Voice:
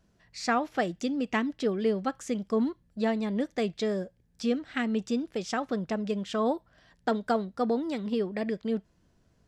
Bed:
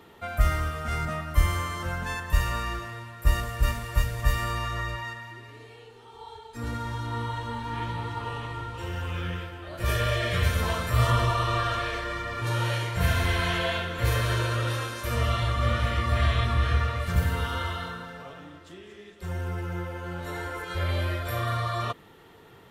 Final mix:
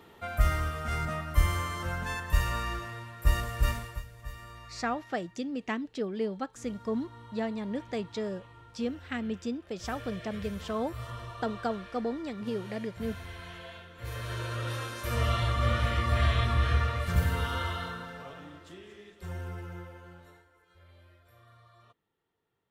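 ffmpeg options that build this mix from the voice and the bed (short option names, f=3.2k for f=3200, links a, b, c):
-filter_complex "[0:a]adelay=4350,volume=-5dB[a];[1:a]volume=13.5dB,afade=t=out:st=3.76:d=0.25:silence=0.16788,afade=t=in:st=13.95:d=1.33:silence=0.158489,afade=t=out:st=18.65:d=1.8:silence=0.0398107[b];[a][b]amix=inputs=2:normalize=0"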